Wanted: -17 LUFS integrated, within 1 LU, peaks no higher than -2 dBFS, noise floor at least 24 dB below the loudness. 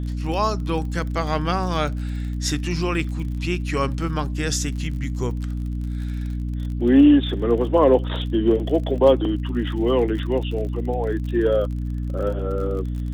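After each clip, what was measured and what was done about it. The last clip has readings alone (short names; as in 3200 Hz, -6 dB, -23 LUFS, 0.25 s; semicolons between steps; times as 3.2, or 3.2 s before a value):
ticks 38/s; hum 60 Hz; harmonics up to 300 Hz; hum level -24 dBFS; loudness -22.5 LUFS; peak -3.5 dBFS; loudness target -17.0 LUFS
-> de-click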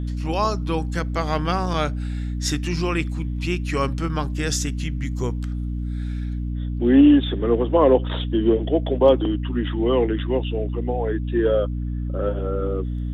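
ticks 0.076/s; hum 60 Hz; harmonics up to 300 Hz; hum level -24 dBFS
-> de-hum 60 Hz, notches 5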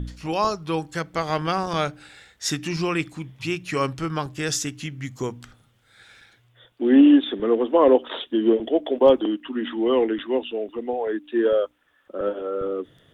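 hum none; loudness -23.0 LUFS; peak -4.5 dBFS; loudness target -17.0 LUFS
-> gain +6 dB; limiter -2 dBFS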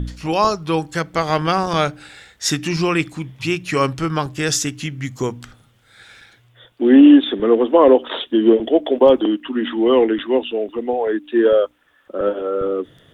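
loudness -17.5 LUFS; peak -2.0 dBFS; noise floor -56 dBFS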